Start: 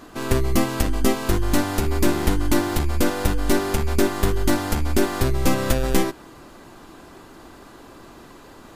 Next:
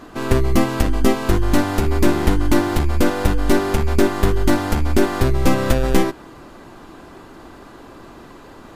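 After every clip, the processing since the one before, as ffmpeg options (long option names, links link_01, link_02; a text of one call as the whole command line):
ffmpeg -i in.wav -af "highshelf=frequency=4300:gain=-7.5,volume=4dB" out.wav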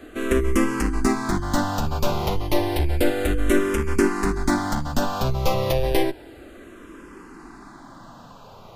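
ffmpeg -i in.wav -filter_complex "[0:a]acrossover=split=270|1200|1900[link_01][link_02][link_03][link_04];[link_01]asoftclip=type=hard:threshold=-16dB[link_05];[link_05][link_02][link_03][link_04]amix=inputs=4:normalize=0,asplit=2[link_06][link_07];[link_07]afreqshift=-0.31[link_08];[link_06][link_08]amix=inputs=2:normalize=1" out.wav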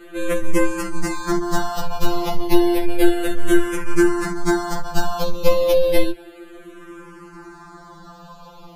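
ffmpeg -i in.wav -af "afftfilt=real='re*2.83*eq(mod(b,8),0)':imag='im*2.83*eq(mod(b,8),0)':win_size=2048:overlap=0.75,volume=4dB" out.wav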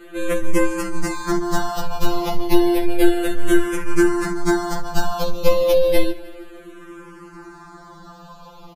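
ffmpeg -i in.wav -af "aecho=1:1:155|310|465|620:0.0841|0.0463|0.0255|0.014" out.wav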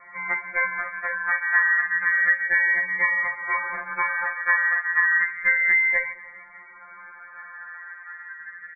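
ffmpeg -i in.wav -af "highpass=frequency=760:width_type=q:width=4.9,lowpass=frequency=2200:width_type=q:width=0.5098,lowpass=frequency=2200:width_type=q:width=0.6013,lowpass=frequency=2200:width_type=q:width=0.9,lowpass=frequency=2200:width_type=q:width=2.563,afreqshift=-2600,volume=-2.5dB" out.wav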